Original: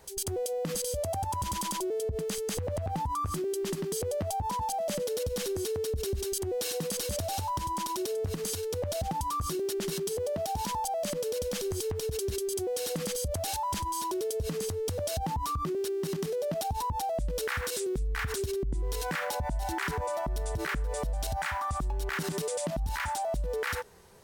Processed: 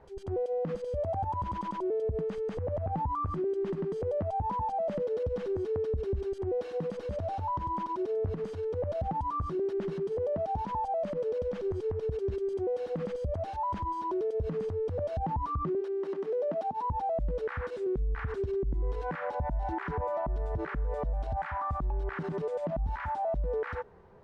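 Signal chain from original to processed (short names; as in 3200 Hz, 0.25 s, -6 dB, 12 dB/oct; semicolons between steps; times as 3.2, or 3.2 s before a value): 15.8–16.83 HPF 410 Hz -> 170 Hz 24 dB/oct; limiter -26 dBFS, peak gain reduction 5 dB; LPF 1300 Hz 12 dB/oct; gain +1.5 dB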